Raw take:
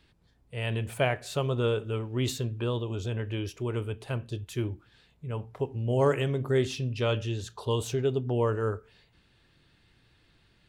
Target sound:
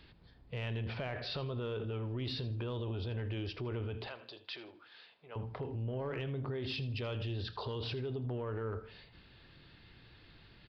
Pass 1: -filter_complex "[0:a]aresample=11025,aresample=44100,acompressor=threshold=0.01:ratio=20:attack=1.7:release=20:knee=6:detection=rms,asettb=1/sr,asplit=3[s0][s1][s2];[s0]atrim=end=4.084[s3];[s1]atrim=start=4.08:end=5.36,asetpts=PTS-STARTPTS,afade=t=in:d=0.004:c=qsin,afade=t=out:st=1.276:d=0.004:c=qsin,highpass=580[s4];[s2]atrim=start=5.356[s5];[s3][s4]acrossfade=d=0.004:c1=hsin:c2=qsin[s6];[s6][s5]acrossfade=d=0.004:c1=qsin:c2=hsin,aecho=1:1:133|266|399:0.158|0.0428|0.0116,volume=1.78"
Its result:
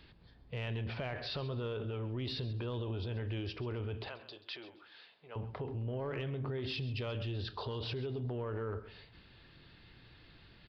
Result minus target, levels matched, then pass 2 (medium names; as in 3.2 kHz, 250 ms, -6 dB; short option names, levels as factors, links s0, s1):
echo 53 ms late
-filter_complex "[0:a]aresample=11025,aresample=44100,acompressor=threshold=0.01:ratio=20:attack=1.7:release=20:knee=6:detection=rms,asettb=1/sr,asplit=3[s0][s1][s2];[s0]atrim=end=4.084[s3];[s1]atrim=start=4.08:end=5.36,asetpts=PTS-STARTPTS,afade=t=in:d=0.004:c=qsin,afade=t=out:st=1.276:d=0.004:c=qsin,highpass=580[s4];[s2]atrim=start=5.356[s5];[s3][s4]acrossfade=d=0.004:c1=hsin:c2=qsin[s6];[s6][s5]acrossfade=d=0.004:c1=qsin:c2=hsin,aecho=1:1:80|160|240:0.158|0.0428|0.0116,volume=1.78"